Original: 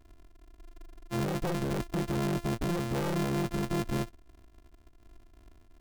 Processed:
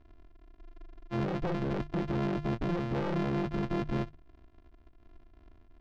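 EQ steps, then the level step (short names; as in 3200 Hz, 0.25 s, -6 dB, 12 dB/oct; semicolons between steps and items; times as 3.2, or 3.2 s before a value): air absorption 220 m; notches 50/100/150 Hz; 0.0 dB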